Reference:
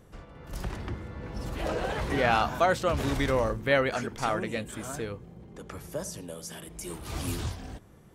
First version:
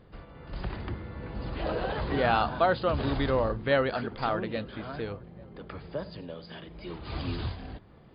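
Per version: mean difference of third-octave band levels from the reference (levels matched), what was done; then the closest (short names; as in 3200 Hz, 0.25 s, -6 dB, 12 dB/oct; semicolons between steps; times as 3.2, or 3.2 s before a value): 4.5 dB: dynamic EQ 2200 Hz, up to -7 dB, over -47 dBFS, Q 2.7; brick-wall FIR low-pass 5000 Hz; narrowing echo 0.836 s, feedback 43%, band-pass 710 Hz, level -23.5 dB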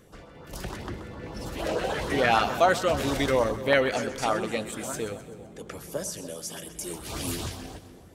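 3.0 dB: low shelf 180 Hz -10.5 dB; LFO notch saw up 6.7 Hz 670–2600 Hz; split-band echo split 790 Hz, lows 0.288 s, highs 0.128 s, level -13 dB; gain +5 dB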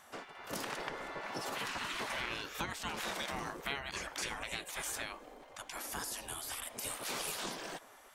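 11.5 dB: spectral gate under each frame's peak -15 dB weak; compressor 12:1, threshold -43 dBFS, peak gain reduction 16.5 dB; gain +7.5 dB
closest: second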